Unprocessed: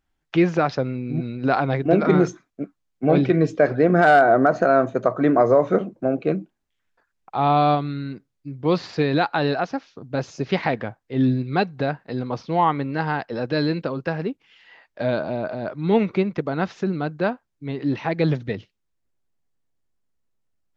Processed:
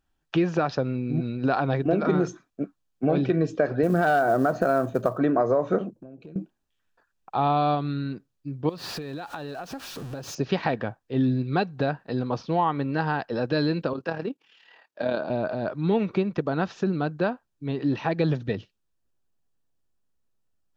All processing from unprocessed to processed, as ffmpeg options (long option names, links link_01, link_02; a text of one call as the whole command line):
ffmpeg -i in.wav -filter_complex "[0:a]asettb=1/sr,asplit=3[link_01][link_02][link_03];[link_01]atrim=end=3.834[link_04];[link_02]atrim=start=3.83:end=5.18,asetpts=PTS-STARTPTS,afade=type=in:duration=0.004:curve=qsin,afade=type=out:start_time=1.346:duration=0.004:curve=qsin,lowshelf=frequency=110:gain=10.5,bandreject=frequency=2100:width=15,acrusher=bits=8:mode=log:mix=0:aa=0.000001[link_05];[link_03]atrim=start=5.176[link_06];[link_04][link_05]acrossfade=duration=0.004:curve1=hsin:curve2=qsin[link_07];[link_07][link_06]acrossfade=duration=0.004:curve1=qsin:curve2=hsin,asettb=1/sr,asplit=3[link_08][link_09][link_10];[link_08]atrim=end=5.904[link_11];[link_09]atrim=start=5.9:end=6.36,asetpts=PTS-STARTPTS,afade=type=in:duration=0.004:curve=qsin,afade=type=out:start_time=0.456:duration=0.004:curve=qsin,equalizer=frequency=1100:width=0.32:gain=-14,acompressor=threshold=-39dB:ratio=16:attack=3.2:release=140:knee=1:detection=peak[link_12];[link_10]atrim=start=6.356[link_13];[link_11][link_12]acrossfade=duration=0.004:curve1=hsin:curve2=qsin[link_14];[link_14][link_13]acrossfade=duration=0.004:curve1=qsin:curve2=hsin,asettb=1/sr,asplit=3[link_15][link_16][link_17];[link_15]atrim=end=8.694[link_18];[link_16]atrim=start=8.69:end=10.35,asetpts=PTS-STARTPTS,afade=type=in:duration=0.004:curve=qsin,afade=type=out:start_time=1.656:duration=0.004:curve=qsin,aeval=exprs='val(0)+0.5*0.0188*sgn(val(0))':channel_layout=same,acompressor=threshold=-31dB:ratio=12:attack=3.2:release=140:knee=1:detection=peak[link_19];[link_17]atrim=start=10.346[link_20];[link_18][link_19]acrossfade=duration=0.004:curve1=hsin:curve2=qsin[link_21];[link_21][link_20]acrossfade=duration=0.004:curve1=qsin:curve2=hsin,asettb=1/sr,asplit=3[link_22][link_23][link_24];[link_22]atrim=end=13.934[link_25];[link_23]atrim=start=13.93:end=15.3,asetpts=PTS-STARTPTS,afade=type=in:duration=0.004:curve=qsin,afade=type=out:start_time=1.366:duration=0.004:curve=qsin,highpass=210,tremolo=f=37:d=0.571[link_26];[link_24]atrim=start=15.296[link_27];[link_25][link_26]acrossfade=duration=0.004:curve1=hsin:curve2=qsin[link_28];[link_28][link_27]acrossfade=duration=0.004:curve1=qsin:curve2=hsin,bandreject=frequency=2100:width=6.2,acompressor=threshold=-20dB:ratio=3" out.wav